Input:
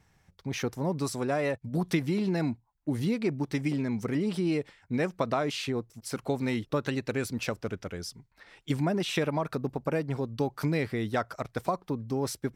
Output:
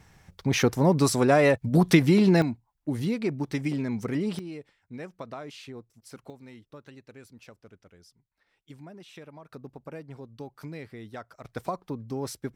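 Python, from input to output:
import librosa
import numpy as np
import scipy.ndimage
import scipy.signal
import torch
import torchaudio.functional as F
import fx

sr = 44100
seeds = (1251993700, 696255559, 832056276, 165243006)

y = fx.gain(x, sr, db=fx.steps((0.0, 9.0), (2.42, 0.5), (4.39, -11.0), (6.3, -18.0), (9.52, -11.5), (11.44, -2.5)))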